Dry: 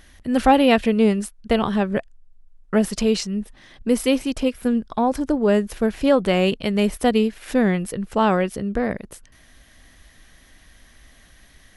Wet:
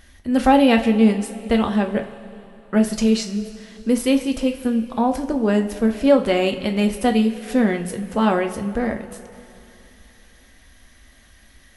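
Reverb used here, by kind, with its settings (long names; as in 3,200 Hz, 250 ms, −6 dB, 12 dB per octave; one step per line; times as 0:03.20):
coupled-rooms reverb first 0.29 s, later 3 s, from −17 dB, DRR 4 dB
level −1.5 dB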